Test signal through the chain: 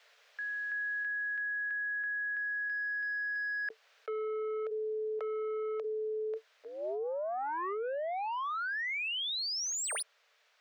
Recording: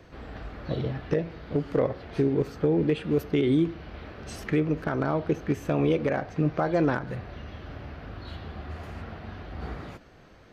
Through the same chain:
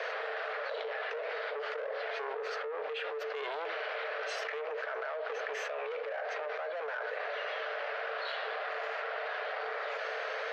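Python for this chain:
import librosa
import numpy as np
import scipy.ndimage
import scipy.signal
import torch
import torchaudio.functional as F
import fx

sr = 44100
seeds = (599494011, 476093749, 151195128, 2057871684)

y = fx.high_shelf(x, sr, hz=3500.0, db=8.5)
y = fx.rider(y, sr, range_db=3, speed_s=0.5)
y = 10.0 ** (-28.0 / 20.0) * np.tanh(y / 10.0 ** (-28.0 / 20.0))
y = scipy.signal.sosfilt(scipy.signal.cheby1(6, 6, 430.0, 'highpass', fs=sr, output='sos'), y)
y = fx.air_absorb(y, sr, metres=220.0)
y = fx.env_flatten(y, sr, amount_pct=100)
y = F.gain(torch.from_numpy(y), -4.0).numpy()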